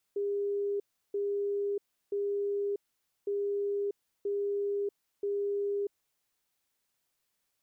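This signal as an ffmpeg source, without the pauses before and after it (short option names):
-f lavfi -i "aevalsrc='0.0376*sin(2*PI*404*t)*clip(min(mod(mod(t,3.11),0.98),0.64-mod(mod(t,3.11),0.98))/0.005,0,1)*lt(mod(t,3.11),2.94)':d=6.22:s=44100"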